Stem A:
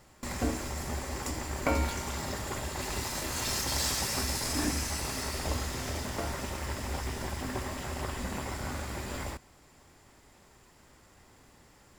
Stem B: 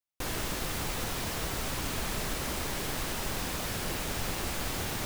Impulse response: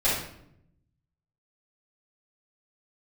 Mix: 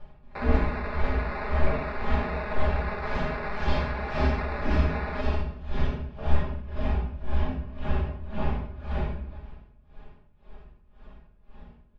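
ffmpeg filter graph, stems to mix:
-filter_complex "[0:a]lowshelf=f=150:g=10,bandreject=f=2000:w=5.5,aeval=exprs='val(0)*pow(10,-28*(0.5-0.5*cos(2*PI*1.9*n/s))/20)':c=same,volume=0.562,asplit=2[s0][s1];[s1]volume=0.631[s2];[1:a]highpass=f=460:w=0.5412,highpass=f=460:w=1.3066,acrusher=samples=14:mix=1:aa=0.000001,adelay=150,volume=0.944,asplit=2[s3][s4];[s4]volume=0.106[s5];[2:a]atrim=start_sample=2205[s6];[s2][s5]amix=inputs=2:normalize=0[s7];[s7][s6]afir=irnorm=-1:irlink=0[s8];[s0][s3][s8]amix=inputs=3:normalize=0,lowpass=f=3200:w=0.5412,lowpass=f=3200:w=1.3066,aecho=1:1:4.8:0.65"

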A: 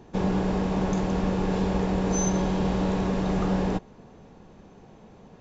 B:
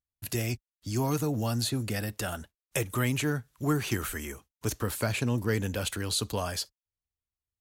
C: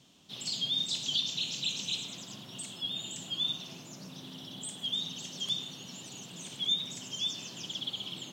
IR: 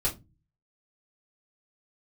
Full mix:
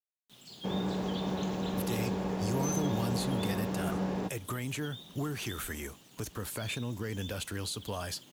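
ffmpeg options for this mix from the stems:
-filter_complex "[0:a]highpass=98,adelay=500,volume=0.422[s0];[1:a]alimiter=level_in=1.33:limit=0.0631:level=0:latency=1:release=262,volume=0.75,adelay=1550,volume=1[s1];[2:a]highshelf=f=3500:g=-9.5,acrusher=bits=7:mix=0:aa=0.000001,volume=0.299[s2];[s0][s1][s2]amix=inputs=3:normalize=0"

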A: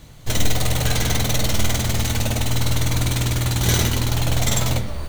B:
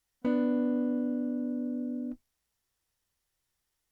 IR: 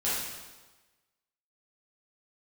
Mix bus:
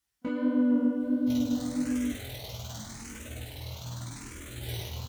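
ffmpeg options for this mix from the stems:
-filter_complex "[0:a]asoftclip=type=tanh:threshold=0.376,asplit=2[s0][s1];[s1]afreqshift=0.84[s2];[s0][s2]amix=inputs=2:normalize=1,adelay=1000,volume=0.211,asplit=2[s3][s4];[s4]volume=0.178[s5];[1:a]dynaudnorm=f=340:g=3:m=1.88,equalizer=f=570:w=1.7:g=-6,volume=1.33[s6];[2:a]atrim=start_sample=2205[s7];[s5][s7]afir=irnorm=-1:irlink=0[s8];[s3][s6][s8]amix=inputs=3:normalize=0,highpass=47,flanger=delay=15.5:depth=7.4:speed=1.5"

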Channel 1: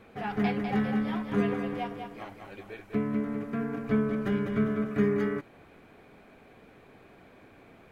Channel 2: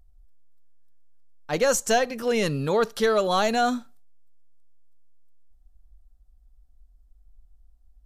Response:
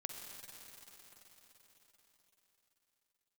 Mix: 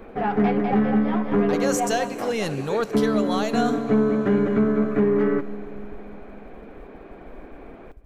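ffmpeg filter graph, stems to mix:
-filter_complex "[0:a]equalizer=f=270:w=0.45:g=9,asplit=2[s0][s1];[s1]highpass=f=720:p=1,volume=7.08,asoftclip=type=tanh:threshold=0.473[s2];[s0][s2]amix=inputs=2:normalize=0,lowpass=f=1000:p=1,volume=0.501,volume=0.841,asplit=2[s3][s4];[s4]volume=0.282[s5];[1:a]acompressor=mode=upward:threshold=0.0562:ratio=2.5,agate=range=0.1:threshold=0.0141:ratio=16:detection=peak,volume=0.596,asplit=2[s6][s7];[s7]volume=0.447[s8];[2:a]atrim=start_sample=2205[s9];[s5][s8]amix=inputs=2:normalize=0[s10];[s10][s9]afir=irnorm=-1:irlink=0[s11];[s3][s6][s11]amix=inputs=3:normalize=0,alimiter=limit=0.282:level=0:latency=1:release=373"

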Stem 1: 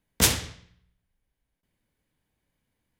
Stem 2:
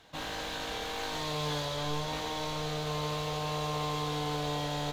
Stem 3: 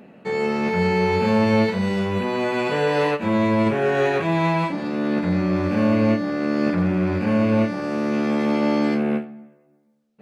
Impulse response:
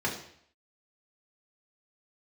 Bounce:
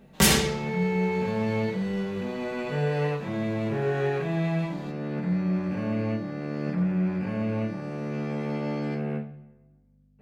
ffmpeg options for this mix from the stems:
-filter_complex "[0:a]aecho=1:1:5.2:0.9,alimiter=limit=0.266:level=0:latency=1:release=70,volume=1.26,asplit=2[s0][s1];[s1]volume=0.355[s2];[1:a]asoftclip=type=hard:threshold=0.0282,volume=0.178[s3];[2:a]equalizer=f=150:w=2.8:g=10.5,aeval=exprs='val(0)+0.00398*(sin(2*PI*50*n/s)+sin(2*PI*2*50*n/s)/2+sin(2*PI*3*50*n/s)/3+sin(2*PI*4*50*n/s)/4+sin(2*PI*5*50*n/s)/5)':c=same,volume=0.2,asplit=2[s4][s5];[s5]volume=0.316[s6];[3:a]atrim=start_sample=2205[s7];[s2][s6]amix=inputs=2:normalize=0[s8];[s8][s7]afir=irnorm=-1:irlink=0[s9];[s0][s3][s4][s9]amix=inputs=4:normalize=0"

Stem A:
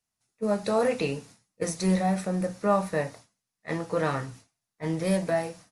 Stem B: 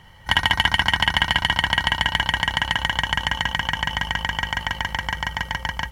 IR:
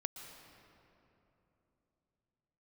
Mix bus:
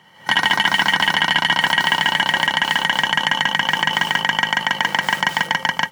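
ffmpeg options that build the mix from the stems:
-filter_complex "[0:a]aeval=exprs='(mod(21.1*val(0)+1,2)-1)/21.1':c=same,volume=0.224[s0];[1:a]alimiter=limit=0.251:level=0:latency=1:release=22,volume=0.944[s1];[s0][s1]amix=inputs=2:normalize=0,highpass=f=170:w=0.5412,highpass=f=170:w=1.3066,equalizer=f=12000:w=2.5:g=-5.5,dynaudnorm=f=130:g=3:m=3.76"

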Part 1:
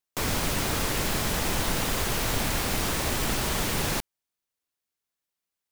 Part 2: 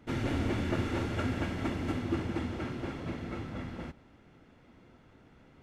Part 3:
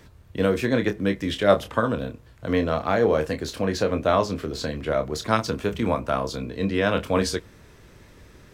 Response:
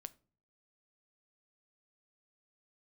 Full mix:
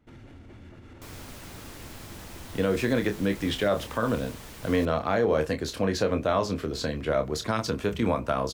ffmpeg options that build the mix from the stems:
-filter_complex "[0:a]adelay=850,volume=0.141[s0];[1:a]lowshelf=f=80:g=10,acontrast=33,alimiter=level_in=1.06:limit=0.0631:level=0:latency=1:release=127,volume=0.944,volume=0.168[s1];[2:a]adelay=2200,volume=0.891[s2];[s0][s1][s2]amix=inputs=3:normalize=0,alimiter=limit=0.2:level=0:latency=1:release=59"

